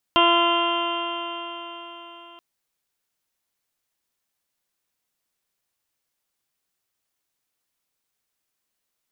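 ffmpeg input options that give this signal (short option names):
-f lavfi -i "aevalsrc='0.0794*pow(10,-3*t/4.36)*sin(2*PI*341.11*t)+0.0891*pow(10,-3*t/4.36)*sin(2*PI*682.89*t)+0.141*pow(10,-3*t/4.36)*sin(2*PI*1025.99*t)+0.0596*pow(10,-3*t/4.36)*sin(2*PI*1371.07*t)+0.0112*pow(10,-3*t/4.36)*sin(2*PI*1718.8*t)+0.0224*pow(10,-3*t/4.36)*sin(2*PI*2069.8*t)+0.0126*pow(10,-3*t/4.36)*sin(2*PI*2424.72*t)+0.0891*pow(10,-3*t/4.36)*sin(2*PI*2784.16*t)+0.0841*pow(10,-3*t/4.36)*sin(2*PI*3148.76*t)+0.0106*pow(10,-3*t/4.36)*sin(2*PI*3519.08*t)':d=2.23:s=44100"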